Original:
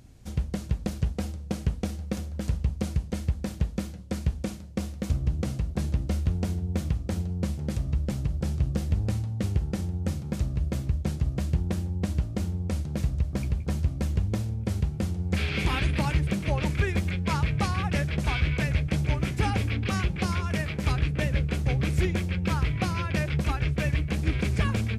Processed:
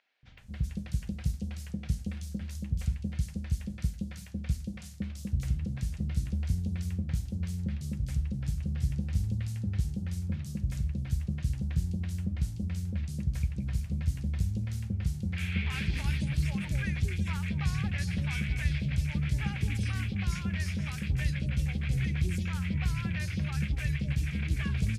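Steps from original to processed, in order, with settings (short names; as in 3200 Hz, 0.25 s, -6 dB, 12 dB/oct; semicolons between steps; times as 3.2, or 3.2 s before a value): band shelf 600 Hz -10 dB 2.5 oct; three bands offset in time mids, lows, highs 0.23/0.38 s, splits 590/3600 Hz; gain -3.5 dB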